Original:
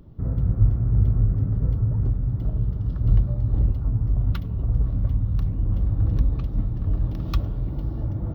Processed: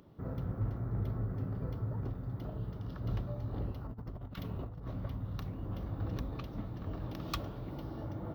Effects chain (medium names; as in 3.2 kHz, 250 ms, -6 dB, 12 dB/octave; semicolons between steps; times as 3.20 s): high-pass 630 Hz 6 dB/octave; 3.87–4.92 s: compressor with a negative ratio -42 dBFS, ratio -0.5; hard clipper -28 dBFS, distortion -25 dB; trim +1 dB